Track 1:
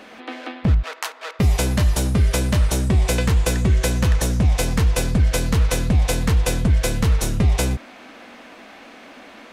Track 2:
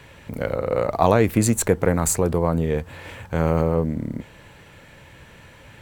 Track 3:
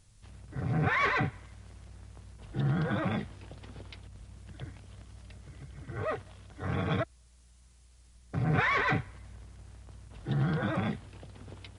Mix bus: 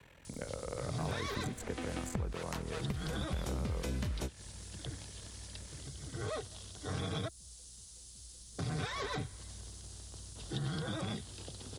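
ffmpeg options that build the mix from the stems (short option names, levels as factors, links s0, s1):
-filter_complex "[0:a]lowshelf=f=380:g=8.5,adelay=1500,volume=0.501[s0];[1:a]aeval=exprs='val(0)*sin(2*PI*21*n/s)':c=same,volume=0.299,asplit=2[s1][s2];[2:a]aexciter=amount=2.8:drive=9.9:freq=3300,adelay=250,volume=0.891[s3];[s2]apad=whole_len=486138[s4];[s0][s4]sidechaingate=range=0.00398:threshold=0.00398:ratio=16:detection=peak[s5];[s5][s3]amix=inputs=2:normalize=0,equalizer=f=390:t=o:w=0.77:g=4.5,acompressor=threshold=0.0794:ratio=6,volume=1[s6];[s1][s6]amix=inputs=2:normalize=0,acrossover=split=88|1000|3400|7200[s7][s8][s9][s10][s11];[s7]acompressor=threshold=0.00794:ratio=4[s12];[s8]acompressor=threshold=0.0112:ratio=4[s13];[s9]acompressor=threshold=0.00398:ratio=4[s14];[s10]acompressor=threshold=0.00282:ratio=4[s15];[s11]acompressor=threshold=0.00141:ratio=4[s16];[s12][s13][s14][s15][s16]amix=inputs=5:normalize=0"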